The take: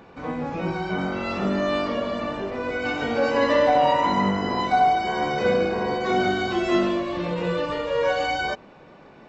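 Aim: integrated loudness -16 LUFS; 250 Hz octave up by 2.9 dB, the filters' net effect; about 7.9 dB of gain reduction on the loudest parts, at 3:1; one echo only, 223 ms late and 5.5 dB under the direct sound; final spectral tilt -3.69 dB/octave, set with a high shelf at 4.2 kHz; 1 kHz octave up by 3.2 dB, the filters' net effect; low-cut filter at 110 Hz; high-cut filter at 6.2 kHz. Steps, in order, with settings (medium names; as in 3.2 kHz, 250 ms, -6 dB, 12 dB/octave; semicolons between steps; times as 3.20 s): high-pass 110 Hz; low-pass 6.2 kHz; peaking EQ 250 Hz +4 dB; peaking EQ 1 kHz +4 dB; treble shelf 4.2 kHz +3.5 dB; compression 3:1, threshold -23 dBFS; delay 223 ms -5.5 dB; trim +9 dB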